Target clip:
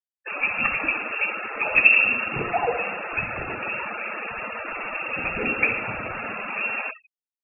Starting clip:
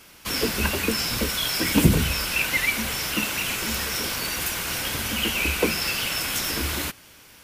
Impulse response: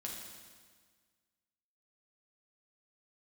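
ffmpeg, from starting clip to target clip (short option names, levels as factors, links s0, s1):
-filter_complex "[0:a]lowpass=f=2400:t=q:w=0.5098,lowpass=f=2400:t=q:w=0.6013,lowpass=f=2400:t=q:w=0.9,lowpass=f=2400:t=q:w=2.563,afreqshift=-2800,asplit=2[s0][s1];[1:a]atrim=start_sample=2205,adelay=65[s2];[s1][s2]afir=irnorm=-1:irlink=0,volume=0.562[s3];[s0][s3]amix=inputs=2:normalize=0,afftfilt=real='re*gte(hypot(re,im),0.0398)':imag='im*gte(hypot(re,im),0.0398)':win_size=1024:overlap=0.75,volume=1.12"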